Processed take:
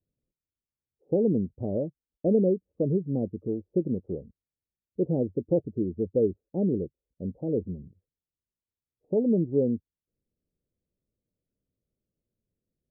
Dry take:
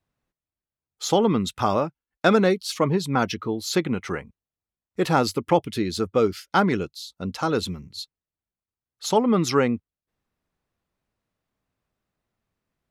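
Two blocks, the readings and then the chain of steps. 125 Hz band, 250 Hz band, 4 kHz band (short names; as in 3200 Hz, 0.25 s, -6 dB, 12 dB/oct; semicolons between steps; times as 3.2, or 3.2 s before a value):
-3.0 dB, -3.0 dB, under -40 dB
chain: steep low-pass 570 Hz 48 dB/oct; gain -3 dB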